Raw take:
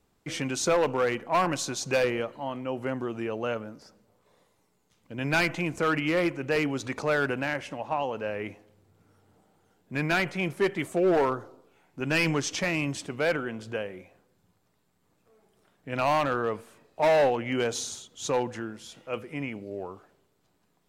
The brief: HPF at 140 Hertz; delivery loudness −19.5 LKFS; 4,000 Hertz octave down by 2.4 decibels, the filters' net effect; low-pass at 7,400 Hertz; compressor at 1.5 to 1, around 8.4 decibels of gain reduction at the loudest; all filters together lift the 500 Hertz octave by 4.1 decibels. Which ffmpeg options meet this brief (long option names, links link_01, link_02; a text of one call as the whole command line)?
ffmpeg -i in.wav -af "highpass=140,lowpass=7400,equalizer=frequency=500:width_type=o:gain=5,equalizer=frequency=4000:width_type=o:gain=-3,acompressor=threshold=-40dB:ratio=1.5,volume=13.5dB" out.wav